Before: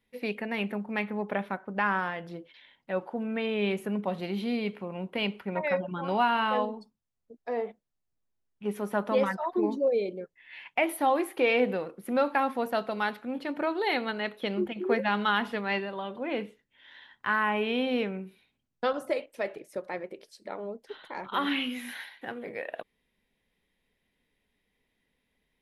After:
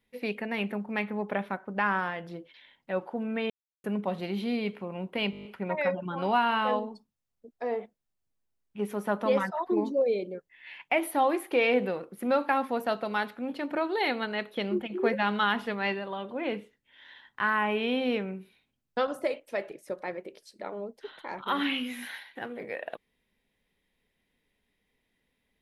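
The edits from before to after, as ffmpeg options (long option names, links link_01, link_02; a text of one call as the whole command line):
ffmpeg -i in.wav -filter_complex "[0:a]asplit=10[link_01][link_02][link_03][link_04][link_05][link_06][link_07][link_08][link_09][link_10];[link_01]atrim=end=3.5,asetpts=PTS-STARTPTS,afade=type=out:start_time=3.496:duration=0.004:curve=hsin[link_11];[link_02]atrim=start=3.5:end=3.84,asetpts=PTS-STARTPTS,volume=0[link_12];[link_03]atrim=start=3.84:end=5.332,asetpts=PTS-STARTPTS,afade=type=in:duration=0.004:curve=hsin[link_13];[link_04]atrim=start=5.308:end=5.332[link_14];[link_05]atrim=start=5.308:end=5.332[link_15];[link_06]atrim=start=5.308:end=5.332[link_16];[link_07]atrim=start=5.308:end=5.332[link_17];[link_08]atrim=start=5.308:end=5.332[link_18];[link_09]atrim=start=5.308:end=5.332[link_19];[link_10]atrim=start=5.308[link_20];[link_11][link_12][link_13]concat=n=3:v=0:a=1[link_21];[link_21][link_14]acrossfade=duration=0.004:curve1=hsin:curve2=hsin[link_22];[link_22][link_15]acrossfade=duration=0.004:curve1=hsin:curve2=hsin[link_23];[link_23][link_16]acrossfade=duration=0.004:curve1=hsin:curve2=hsin[link_24];[link_24][link_17]acrossfade=duration=0.004:curve1=hsin:curve2=hsin[link_25];[link_25][link_18]acrossfade=duration=0.004:curve1=hsin:curve2=hsin[link_26];[link_26][link_19]acrossfade=duration=0.004:curve1=hsin:curve2=hsin[link_27];[link_27][link_20]acrossfade=duration=0.004:curve1=hsin:curve2=hsin" out.wav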